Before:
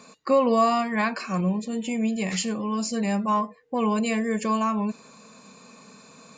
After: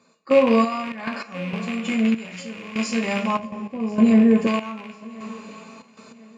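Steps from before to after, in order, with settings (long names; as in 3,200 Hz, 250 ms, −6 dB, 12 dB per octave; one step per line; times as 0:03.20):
loose part that buzzes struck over −38 dBFS, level −16 dBFS
high-pass filter 65 Hz
high-shelf EQ 8,100 Hz −11.5 dB
coupled-rooms reverb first 0.28 s, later 3.8 s, from −20 dB, DRR −0.5 dB
gate pattern "..xxxx.x..xxxx.." 98 BPM −12 dB
0:00.64–0:01.85: downward compressor 6 to 1, threshold −24 dBFS, peak gain reduction 9 dB
0:03.39–0:04.47: tilt shelving filter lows +9 dB, about 820 Hz
feedback echo with a high-pass in the loop 1,041 ms, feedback 40%, high-pass 170 Hz, level −21 dB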